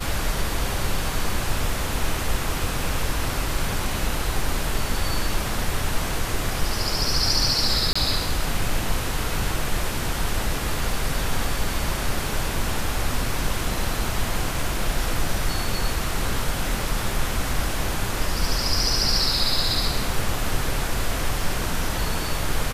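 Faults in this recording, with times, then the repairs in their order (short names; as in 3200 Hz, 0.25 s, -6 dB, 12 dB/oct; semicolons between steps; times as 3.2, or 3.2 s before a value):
7.93–7.96 gap 25 ms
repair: interpolate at 7.93, 25 ms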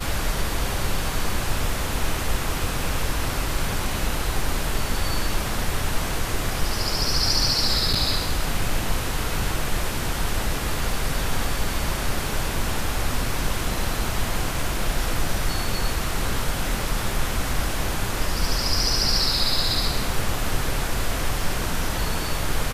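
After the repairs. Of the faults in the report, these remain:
none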